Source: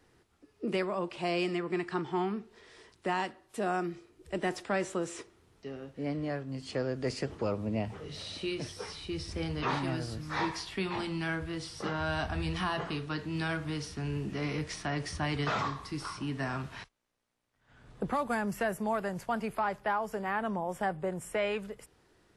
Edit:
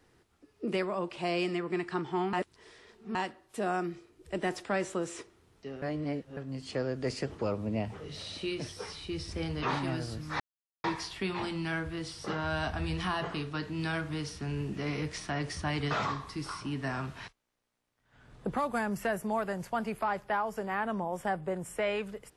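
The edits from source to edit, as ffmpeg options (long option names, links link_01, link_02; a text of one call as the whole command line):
ffmpeg -i in.wav -filter_complex "[0:a]asplit=6[link_01][link_02][link_03][link_04][link_05][link_06];[link_01]atrim=end=2.332[link_07];[link_02]atrim=start=2.328:end=3.152,asetpts=PTS-STARTPTS,areverse[link_08];[link_03]atrim=start=3.148:end=5.822[link_09];[link_04]atrim=start=5.818:end=6.372,asetpts=PTS-STARTPTS,areverse[link_10];[link_05]atrim=start=6.368:end=10.4,asetpts=PTS-STARTPTS,afade=type=out:start_time=4.028:duration=0.004:curve=hsin,apad=pad_dur=0.44[link_11];[link_06]atrim=start=10.4,asetpts=PTS-STARTPTS,afade=type=in:duration=0.004:curve=hsin[link_12];[link_07][link_08]acrossfade=duration=0.004:curve1=hsin:curve2=hsin[link_13];[link_13][link_09]acrossfade=duration=0.004:curve1=hsin:curve2=hsin[link_14];[link_14][link_10]acrossfade=duration=0.004:curve1=hsin:curve2=hsin[link_15];[link_11][link_12]concat=n=2:v=0:a=1[link_16];[link_15][link_16]acrossfade=duration=0.004:curve1=hsin:curve2=hsin" out.wav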